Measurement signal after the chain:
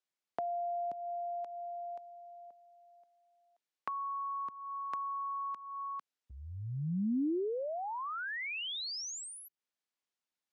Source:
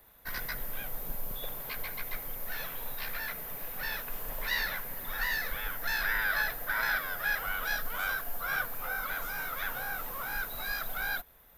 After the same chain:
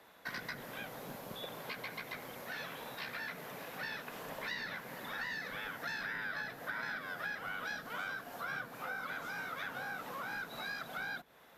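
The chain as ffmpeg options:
-filter_complex "[0:a]acrossover=split=320[a][b];[b]acompressor=threshold=-42dB:ratio=10[c];[a][c]amix=inputs=2:normalize=0,highpass=190,lowpass=6.6k,volume=4.5dB"

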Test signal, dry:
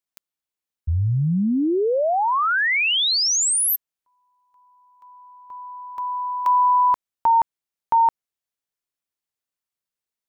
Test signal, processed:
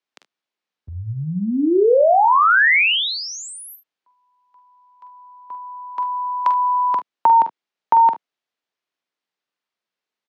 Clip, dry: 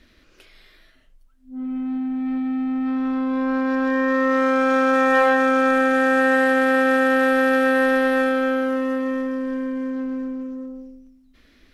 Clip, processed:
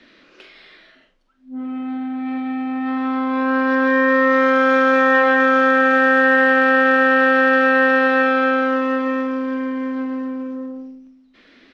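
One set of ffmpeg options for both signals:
-filter_complex "[0:a]lowpass=7.1k,acrossover=split=170 5100:gain=0.0631 1 0.2[a][b][c];[a][b][c]amix=inputs=3:normalize=0,acrossover=split=360|2700[d][e][f];[d]acompressor=threshold=-33dB:ratio=4[g];[e]acompressor=threshold=-20dB:ratio=4[h];[f]acompressor=threshold=-41dB:ratio=4[i];[g][h][i]amix=inputs=3:normalize=0,aecho=1:1:45|56|74:0.355|0.15|0.126,volume=7.5dB"

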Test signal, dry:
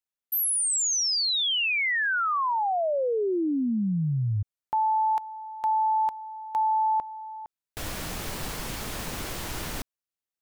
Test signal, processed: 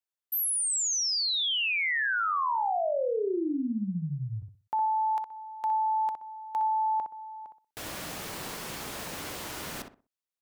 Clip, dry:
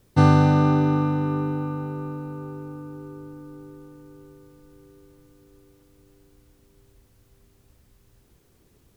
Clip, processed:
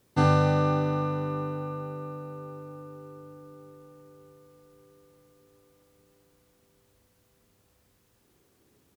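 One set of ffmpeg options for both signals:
-filter_complex "[0:a]highpass=f=110:p=1,lowshelf=f=170:g=-5.5,asplit=2[a][b];[b]adelay=62,lowpass=f=1.7k:p=1,volume=-5dB,asplit=2[c][d];[d]adelay=62,lowpass=f=1.7k:p=1,volume=0.29,asplit=2[e][f];[f]adelay=62,lowpass=f=1.7k:p=1,volume=0.29,asplit=2[g][h];[h]adelay=62,lowpass=f=1.7k:p=1,volume=0.29[i];[c][e][g][i]amix=inputs=4:normalize=0[j];[a][j]amix=inputs=2:normalize=0,volume=-3dB"

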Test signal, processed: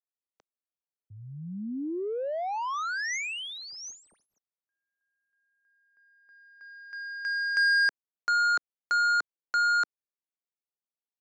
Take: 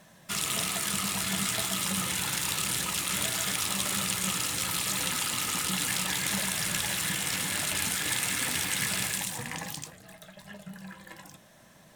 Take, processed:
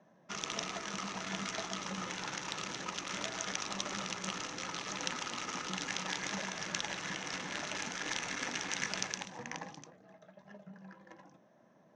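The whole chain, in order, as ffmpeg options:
-filter_complex "[0:a]highpass=250,acrossover=split=400[a][b];[b]adynamicsmooth=sensitivity=2:basefreq=940[c];[a][c]amix=inputs=2:normalize=0,lowpass=f=6.1k:t=q:w=7.2,volume=-2dB"

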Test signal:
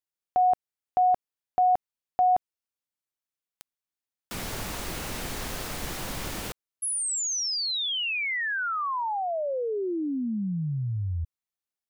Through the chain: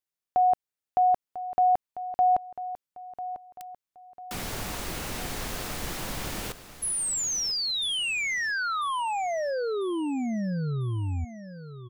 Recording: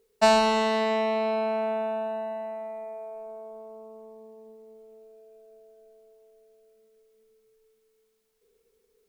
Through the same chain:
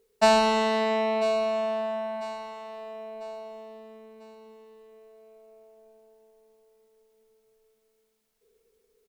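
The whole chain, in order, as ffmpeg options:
-af "aecho=1:1:996|1992|2988|3984:0.211|0.0845|0.0338|0.0135"

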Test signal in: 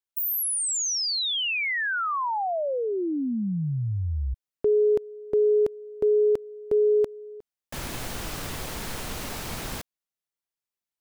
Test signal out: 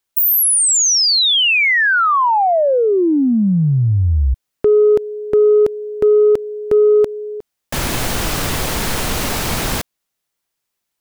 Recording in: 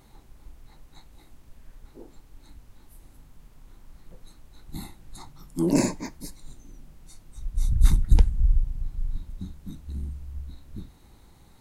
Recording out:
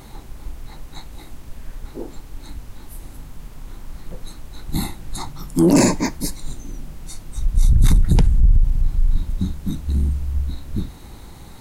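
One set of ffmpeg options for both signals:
-af "aeval=exprs='0.596*sin(PI/2*2.24*val(0)/0.596)':c=same,acompressor=threshold=-12dB:ratio=6:attack=0.94:release=37:knee=6,volume=3.5dB"

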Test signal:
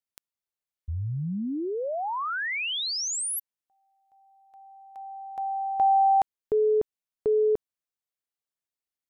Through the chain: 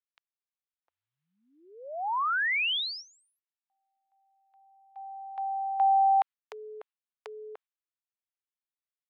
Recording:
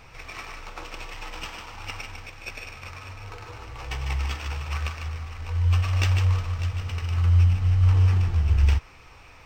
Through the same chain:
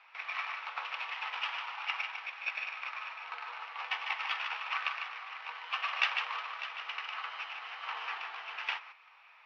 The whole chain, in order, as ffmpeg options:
-af "lowpass=f=3.6k:w=0.5412,lowpass=f=3.6k:w=1.3066,agate=range=-9dB:threshold=-46dB:ratio=16:release=164:detection=peak,highpass=f=840:w=0.5412,highpass=f=840:w=1.3066,volume=2.5dB"

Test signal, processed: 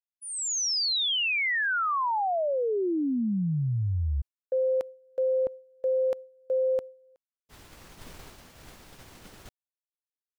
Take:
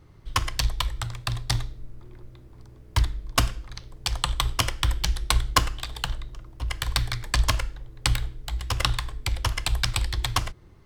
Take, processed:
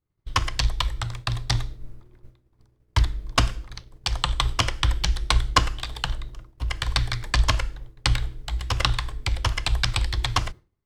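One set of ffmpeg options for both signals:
-filter_complex "[0:a]acrossover=split=7700[a][b];[b]acompressor=threshold=-49dB:ratio=4:attack=1:release=60[c];[a][c]amix=inputs=2:normalize=0,agate=range=-33dB:threshold=-34dB:ratio=3:detection=peak,volume=2dB"

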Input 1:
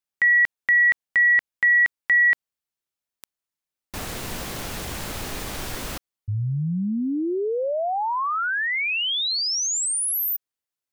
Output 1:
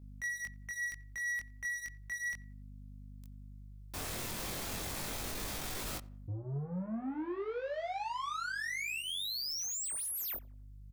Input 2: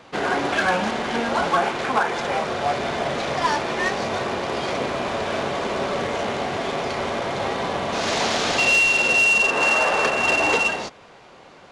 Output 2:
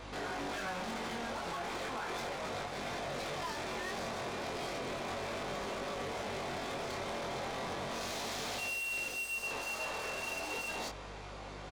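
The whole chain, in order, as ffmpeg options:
-filter_complex "[0:a]areverse,acompressor=threshold=-28dB:ratio=10:attack=0.95:release=39:detection=peak,areverse,aeval=exprs='val(0)+0.00282*(sin(2*PI*50*n/s)+sin(2*PI*2*50*n/s)/2+sin(2*PI*3*50*n/s)/3+sin(2*PI*4*50*n/s)/4+sin(2*PI*5*50*n/s)/5)':c=same,highshelf=f=4.4k:g=3.5,aeval=exprs='0.0596*(abs(mod(val(0)/0.0596+3,4)-2)-1)':c=same,equalizer=f=1.6k:w=8:g=-2.5,asoftclip=type=tanh:threshold=-37dB,bandreject=f=2.9k:w=22,asplit=2[a][b];[b]adelay=89,lowpass=f=1.7k:p=1,volume=-20dB,asplit=2[c][d];[d]adelay=89,lowpass=f=1.7k:p=1,volume=0.45,asplit=2[e][f];[f]adelay=89,lowpass=f=1.7k:p=1,volume=0.45[g];[a][c][e][g]amix=inputs=4:normalize=0,flanger=delay=20:depth=2.9:speed=0.34,volume=3dB"

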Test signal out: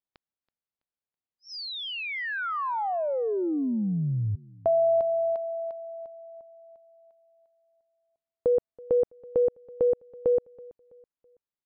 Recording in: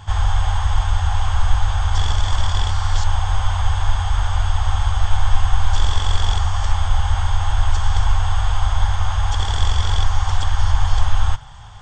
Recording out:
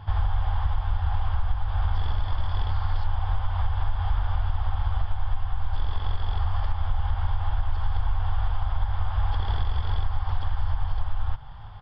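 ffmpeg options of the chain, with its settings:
-filter_complex "[0:a]highshelf=f=2k:g=-11.5,acompressor=threshold=-17dB:ratio=6,asplit=2[a][b];[b]aecho=0:1:328|656|984:0.0708|0.0276|0.0108[c];[a][c]amix=inputs=2:normalize=0,aresample=11025,aresample=44100,volume=-2dB"

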